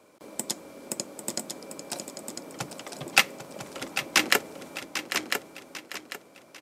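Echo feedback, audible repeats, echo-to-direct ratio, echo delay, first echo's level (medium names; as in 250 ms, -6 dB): no regular repeats, 7, -4.5 dB, 796 ms, -10.5 dB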